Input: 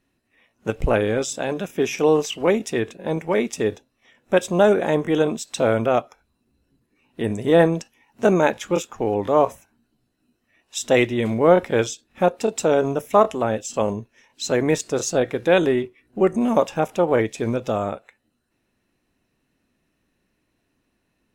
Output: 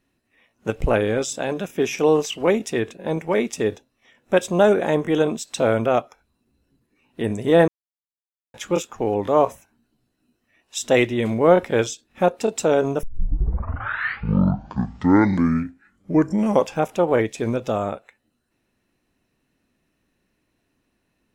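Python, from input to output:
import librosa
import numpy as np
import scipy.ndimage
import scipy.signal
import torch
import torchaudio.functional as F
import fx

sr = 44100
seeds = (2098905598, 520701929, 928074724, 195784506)

y = fx.edit(x, sr, fx.silence(start_s=7.68, length_s=0.86),
    fx.tape_start(start_s=13.03, length_s=3.82), tone=tone)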